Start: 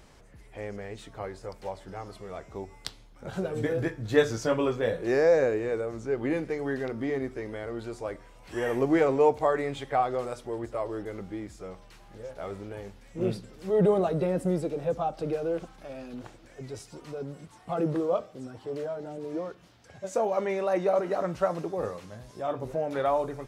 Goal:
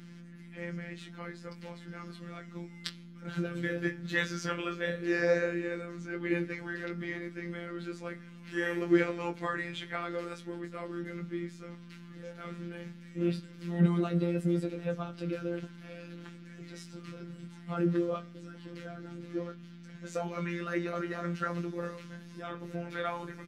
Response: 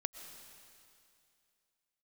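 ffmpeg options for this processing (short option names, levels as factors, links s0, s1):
-filter_complex "[0:a]asplit=2[s0][s1];[s1]adelay=19,volume=0.447[s2];[s0][s2]amix=inputs=2:normalize=0,aeval=exprs='val(0)+0.00891*(sin(2*PI*60*n/s)+sin(2*PI*2*60*n/s)/2+sin(2*PI*3*60*n/s)/3+sin(2*PI*4*60*n/s)/4+sin(2*PI*5*60*n/s)/5)':c=same,firequalizer=gain_entry='entry(110,0);entry(220,10);entry(740,-4);entry(1400,13);entry(2700,13);entry(7800,4)':delay=0.05:min_phase=1,afftfilt=real='hypot(re,im)*cos(PI*b)':imag='0':win_size=1024:overlap=0.75,lowshelf=f=120:t=q:w=3:g=-6,volume=0.376"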